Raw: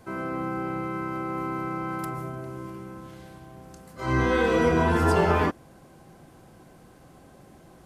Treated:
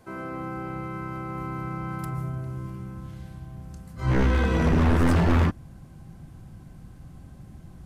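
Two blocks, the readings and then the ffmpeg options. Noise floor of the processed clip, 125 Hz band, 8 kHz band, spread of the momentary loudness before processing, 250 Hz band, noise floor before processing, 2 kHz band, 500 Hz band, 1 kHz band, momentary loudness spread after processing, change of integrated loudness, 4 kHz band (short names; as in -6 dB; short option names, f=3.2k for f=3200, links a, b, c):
-47 dBFS, +5.5 dB, -2.0 dB, 19 LU, +1.0 dB, -52 dBFS, -3.0 dB, -5.5 dB, -4.5 dB, 21 LU, 0.0 dB, -1.0 dB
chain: -af "asubboost=boost=9:cutoff=150,aeval=exprs='0.75*(cos(1*acos(clip(val(0)/0.75,-1,1)))-cos(1*PI/2))+0.106*(cos(4*acos(clip(val(0)/0.75,-1,1)))-cos(4*PI/2))+0.0422*(cos(6*acos(clip(val(0)/0.75,-1,1)))-cos(6*PI/2))':c=same,aeval=exprs='0.251*(abs(mod(val(0)/0.251+3,4)-2)-1)':c=same,volume=-3dB"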